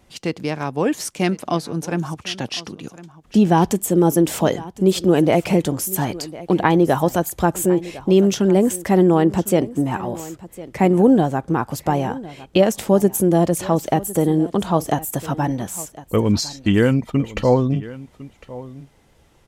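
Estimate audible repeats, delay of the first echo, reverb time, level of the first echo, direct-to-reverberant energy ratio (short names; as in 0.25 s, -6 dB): 1, 1.055 s, none, -18.0 dB, none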